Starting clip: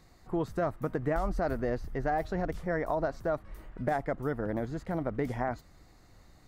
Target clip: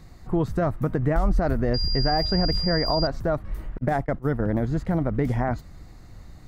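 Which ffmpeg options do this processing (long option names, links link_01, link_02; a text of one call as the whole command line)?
ffmpeg -i in.wav -filter_complex "[0:a]asettb=1/sr,asplit=3[link_01][link_02][link_03];[link_01]atrim=end=3.784[link_04];[link_02]atrim=start=3.78:end=4.52,asetpts=PTS-STARTPTS,afade=type=in:duration=0.004:curve=qsin,afade=type=out:start_time=0.736:duration=0.004:curve=qsin,agate=range=-42dB:threshold=-34dB:ratio=16:detection=peak[link_05];[link_03]atrim=start=4.516[link_06];[link_04][link_05]acrossfade=duration=0.004:curve1=hsin:curve2=qsin[link_07];[link_07][link_06]acrossfade=duration=0.004:curve1=qsin:curve2=hsin,bass=frequency=250:gain=8,treble=frequency=4000:gain=-1,asplit=2[link_08][link_09];[link_09]alimiter=limit=-21.5dB:level=0:latency=1:release=118,volume=1dB[link_10];[link_08][link_10]amix=inputs=2:normalize=0,asettb=1/sr,asplit=3[link_11][link_12][link_13];[link_11]atrim=end=1.744[link_14];[link_12]atrim=start=1.74:end=3.07,asetpts=PTS-STARTPTS,afade=type=in:duration=0.004:curve=qsin,afade=type=out:start_time=1.326:duration=0.004:curve=qsin,aeval=exprs='val(0)+0.0447*sin(2*PI*4800*n/s)':channel_layout=same[link_15];[link_13]atrim=start=3.066[link_16];[link_14][link_15]acrossfade=duration=0.004:curve1=hsin:curve2=qsin[link_17];[link_17][link_16]acrossfade=duration=0.004:curve1=qsin:curve2=hsin" out.wav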